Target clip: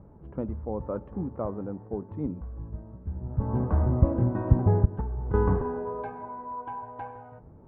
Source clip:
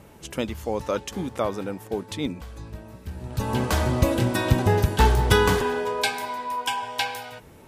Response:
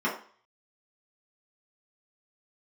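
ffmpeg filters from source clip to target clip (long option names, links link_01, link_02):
-filter_complex "[0:a]lowpass=frequency=1200:width=0.5412,lowpass=frequency=1200:width=1.3066,lowshelf=frequency=220:gain=11,asettb=1/sr,asplit=3[link_01][link_02][link_03];[link_01]atrim=end=4.854[link_04];[link_02]atrim=start=4.85:end=5.34,asetpts=PTS-STARTPTS,afade=type=in:duration=0.004:curve=qsin,afade=type=out:start_time=0.486:duration=0.004:curve=qsin,acompressor=threshold=-20dB:ratio=12[link_05];[link_03]atrim=start=5.336[link_06];[link_04][link_05]acrossfade=duration=0.004:curve1=hsin:curve2=qsin[link_07];[link_07][link_06]acrossfade=duration=0.004:curve1=qsin:curve2=hsin,asplit=2[link_08][link_09];[1:a]atrim=start_sample=2205,asetrate=27783,aresample=44100[link_10];[link_09][link_10]afir=irnorm=-1:irlink=0,volume=-33dB[link_11];[link_08][link_11]amix=inputs=2:normalize=0,volume=-8dB"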